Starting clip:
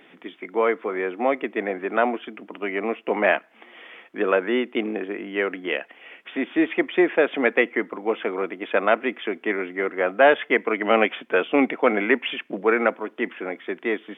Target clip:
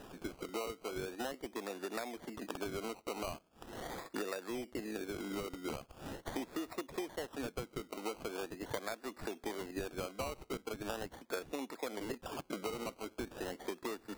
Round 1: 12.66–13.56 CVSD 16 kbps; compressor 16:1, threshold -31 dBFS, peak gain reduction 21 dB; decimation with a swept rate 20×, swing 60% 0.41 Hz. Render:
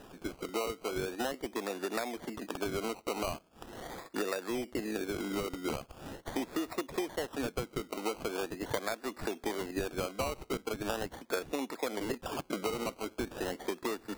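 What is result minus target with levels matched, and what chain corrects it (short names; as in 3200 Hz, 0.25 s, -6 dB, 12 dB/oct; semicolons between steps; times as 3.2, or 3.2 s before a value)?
compressor: peak gain reduction -5.5 dB
12.66–13.56 CVSD 16 kbps; compressor 16:1, threshold -37 dBFS, peak gain reduction 27 dB; decimation with a swept rate 20×, swing 60% 0.41 Hz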